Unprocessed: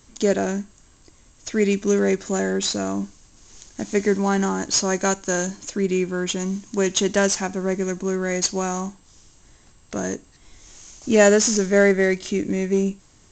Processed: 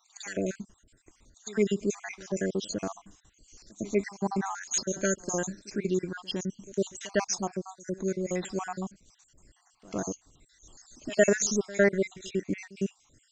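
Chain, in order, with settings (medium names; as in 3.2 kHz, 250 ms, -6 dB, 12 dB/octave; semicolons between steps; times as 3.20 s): random holes in the spectrogram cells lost 62%; pre-echo 106 ms -20.5 dB; trim -5 dB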